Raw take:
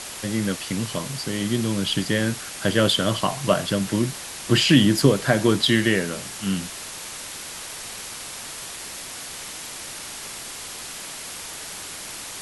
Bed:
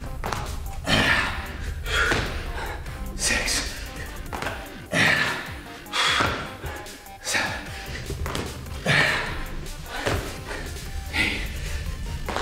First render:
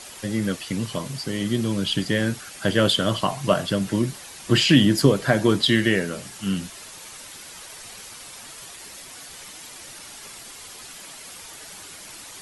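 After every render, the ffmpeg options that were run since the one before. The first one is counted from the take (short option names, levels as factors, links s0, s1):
-af "afftdn=nr=8:nf=-36"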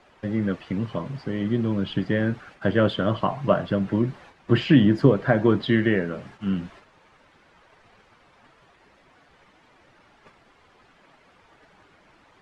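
-af "lowpass=1700,agate=range=0.398:threshold=0.00501:ratio=16:detection=peak"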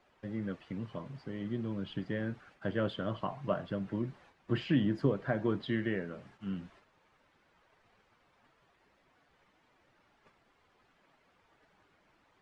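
-af "volume=0.237"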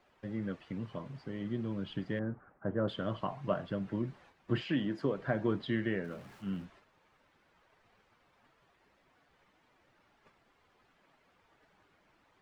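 -filter_complex "[0:a]asettb=1/sr,asplit=3[s0][s1][s2];[s0]atrim=end=2.194[s3];[s1]atrim=start=2.19:end=2.88,asetpts=PTS-STARTPTS,afade=t=in:d=0.004:c=qsin,afade=t=out:st=0.686:d=0.004:c=qsin,lowpass=f=1400:w=0.5412,lowpass=f=1400:w=1.3066[s4];[s2]atrim=start=2.876[s5];[s3][s4]acrossfade=d=0.004:c1=hsin:c2=qsin[s6];[s6][s5]acrossfade=d=0.004:c1=qsin:c2=hsin,asettb=1/sr,asplit=3[s7][s8][s9];[s7]atrim=end=4.614[s10];[s8]atrim=start=4.61:end=5.18,asetpts=PTS-STARTPTS,afade=t=in:d=0.004:c=qsin,afade=t=out:st=0.566:d=0.004:c=qsin,highpass=f=300:p=1[s11];[s9]atrim=start=5.176[s12];[s10][s11]acrossfade=d=0.004:c1=hsin:c2=qsin[s13];[s13][s12]acrossfade=d=0.004:c1=qsin:c2=hsin,asettb=1/sr,asplit=3[s14][s15][s16];[s14]atrim=end=6.044[s17];[s15]atrim=start=6.04:end=6.65,asetpts=PTS-STARTPTS,afade=t=in:d=0.004:c=qsin,afade=t=out:st=0.606:d=0.004:c=qsin,aeval=exprs='val(0)+0.5*0.00178*sgn(val(0))':c=same[s18];[s16]atrim=start=6.646[s19];[s17][s18]acrossfade=d=0.004:c1=hsin:c2=qsin[s20];[s20][s19]acrossfade=d=0.004:c1=qsin:c2=hsin"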